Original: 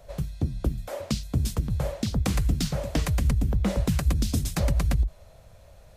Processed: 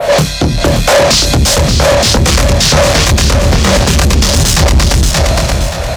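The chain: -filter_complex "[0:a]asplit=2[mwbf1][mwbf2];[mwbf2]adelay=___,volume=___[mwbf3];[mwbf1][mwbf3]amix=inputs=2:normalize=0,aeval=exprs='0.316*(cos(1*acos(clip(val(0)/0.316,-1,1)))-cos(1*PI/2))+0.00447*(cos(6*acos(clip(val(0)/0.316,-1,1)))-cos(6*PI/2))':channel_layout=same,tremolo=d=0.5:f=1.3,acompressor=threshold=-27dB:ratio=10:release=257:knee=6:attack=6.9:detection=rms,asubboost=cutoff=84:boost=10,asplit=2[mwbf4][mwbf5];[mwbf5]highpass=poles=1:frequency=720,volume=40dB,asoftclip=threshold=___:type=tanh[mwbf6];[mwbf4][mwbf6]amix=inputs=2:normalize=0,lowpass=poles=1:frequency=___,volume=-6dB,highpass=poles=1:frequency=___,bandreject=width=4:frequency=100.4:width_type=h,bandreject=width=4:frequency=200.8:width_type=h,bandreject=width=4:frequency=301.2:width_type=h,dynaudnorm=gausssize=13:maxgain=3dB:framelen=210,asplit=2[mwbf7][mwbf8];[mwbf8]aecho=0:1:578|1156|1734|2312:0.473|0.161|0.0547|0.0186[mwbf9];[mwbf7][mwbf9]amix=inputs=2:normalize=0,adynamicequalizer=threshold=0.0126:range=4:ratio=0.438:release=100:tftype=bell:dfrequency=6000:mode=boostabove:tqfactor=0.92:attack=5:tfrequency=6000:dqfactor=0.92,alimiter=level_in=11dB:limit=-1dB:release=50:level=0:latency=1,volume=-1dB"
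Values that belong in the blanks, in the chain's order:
26, -2.5dB, -9dB, 3000, 56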